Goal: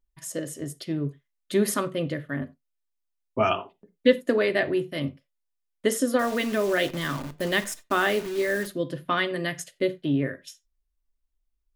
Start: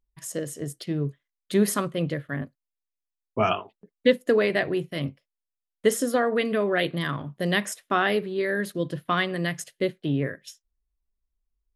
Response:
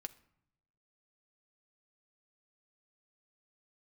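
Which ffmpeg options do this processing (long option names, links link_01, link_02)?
-filter_complex "[0:a]asettb=1/sr,asplit=3[link_01][link_02][link_03];[link_01]atrim=end=6.194[link_04];[link_02]atrim=start=6.19:end=8.67,asetpts=PTS-STARTPTS,afade=type=in:duration=0.004:curve=qsin,afade=type=out:start_time=2.476:duration=0.004:curve=qsin,acrusher=bits=7:dc=4:mix=0:aa=0.000001[link_05];[link_03]atrim=start=8.666[link_06];[link_04][link_05]acrossfade=duration=0.004:curve1=hsin:curve2=qsin[link_07];[link_07][link_06]acrossfade=duration=0.004:curve1=qsin:curve2=hsin[link_08];[1:a]atrim=start_sample=2205,atrim=end_sample=6174,asetrate=61740,aresample=44100[link_09];[link_08][link_09]afir=irnorm=-1:irlink=0,volume=7dB"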